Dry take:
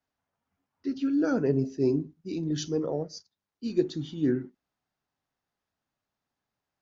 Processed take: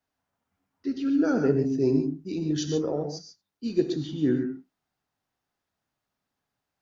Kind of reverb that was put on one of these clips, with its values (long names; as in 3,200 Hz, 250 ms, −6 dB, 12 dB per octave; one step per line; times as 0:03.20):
reverb whose tail is shaped and stops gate 160 ms rising, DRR 6 dB
level +1.5 dB